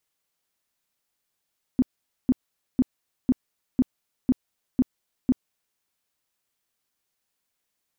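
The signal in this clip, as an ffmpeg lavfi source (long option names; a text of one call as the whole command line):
ffmpeg -f lavfi -i "aevalsrc='0.188*sin(2*PI*255*mod(t,0.5))*lt(mod(t,0.5),8/255)':duration=4:sample_rate=44100" out.wav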